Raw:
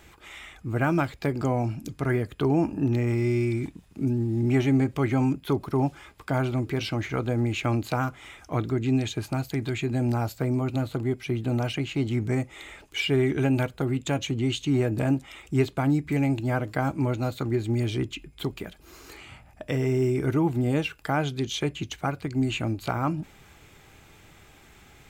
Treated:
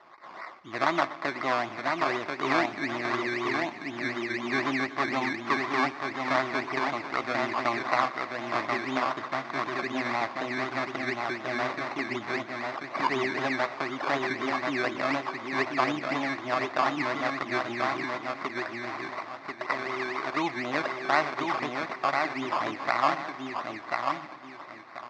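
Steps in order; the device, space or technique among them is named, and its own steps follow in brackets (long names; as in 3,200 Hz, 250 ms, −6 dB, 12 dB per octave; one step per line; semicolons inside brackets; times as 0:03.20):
0:18.51–0:20.37: tilt shelving filter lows −7 dB, about 730 Hz
repeating echo 1,037 ms, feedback 30%, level −3.5 dB
circuit-bent sampling toy (sample-and-hold swept by an LFO 18×, swing 60% 4 Hz; loudspeaker in its box 440–4,700 Hz, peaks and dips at 460 Hz −9 dB, 660 Hz +4 dB, 1,100 Hz +10 dB, 2,000 Hz +9 dB, 3,000 Hz −8 dB)
feedback echo with a swinging delay time 121 ms, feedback 74%, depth 108 cents, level −18.5 dB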